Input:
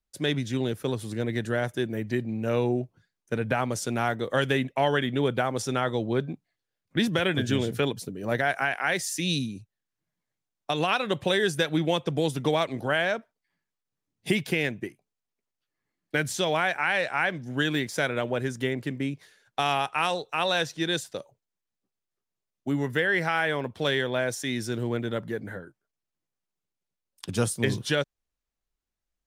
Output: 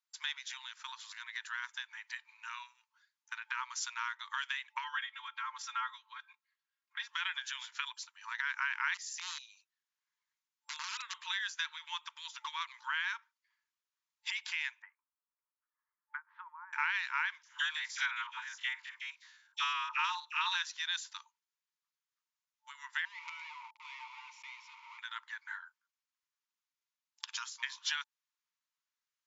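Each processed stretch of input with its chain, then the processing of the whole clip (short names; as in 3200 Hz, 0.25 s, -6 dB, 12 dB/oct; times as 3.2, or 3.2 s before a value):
4.84–7.09 high shelf 2900 Hz -10.5 dB + comb 3.7 ms, depth 89%
8.94–11.14 wrapped overs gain 20 dB + compressor 3:1, threshold -39 dBFS
14.82–16.73 treble ducked by the level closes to 450 Hz, closed at -21 dBFS + LPF 1500 Hz 24 dB/oct
17.43–20.55 stepped spectrum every 50 ms + dispersion lows, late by 0.12 s, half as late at 710 Hz
23.05–24.99 companded quantiser 2-bit + vowel filter u
whole clip: compressor, threshold -28 dBFS; FFT band-pass 880–7400 Hz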